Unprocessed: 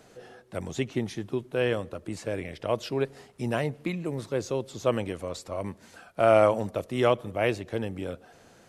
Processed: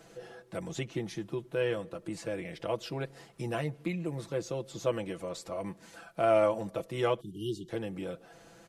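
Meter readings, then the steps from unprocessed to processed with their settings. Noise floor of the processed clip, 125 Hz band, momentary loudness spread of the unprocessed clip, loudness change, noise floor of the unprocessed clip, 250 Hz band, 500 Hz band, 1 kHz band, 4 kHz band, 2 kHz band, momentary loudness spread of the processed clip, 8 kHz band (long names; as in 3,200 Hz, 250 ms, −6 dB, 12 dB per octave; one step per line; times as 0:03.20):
−58 dBFS, −5.0 dB, 13 LU, −5.5 dB, −56 dBFS, −5.0 dB, −5.0 dB, −5.5 dB, −4.5 dB, −6.5 dB, 12 LU, −3.5 dB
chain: time-frequency box erased 0:07.20–0:07.69, 450–2,800 Hz
comb filter 6 ms, depth 68%
in parallel at +2 dB: downward compressor, threshold −36 dBFS, peak gain reduction 21.5 dB
on the sum: level −9 dB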